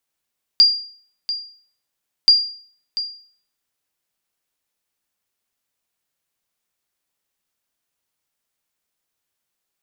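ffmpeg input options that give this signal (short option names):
-f lavfi -i "aevalsrc='0.596*(sin(2*PI*4790*mod(t,1.68))*exp(-6.91*mod(t,1.68)/0.5)+0.224*sin(2*PI*4790*max(mod(t,1.68)-0.69,0))*exp(-6.91*max(mod(t,1.68)-0.69,0)/0.5))':d=3.36:s=44100"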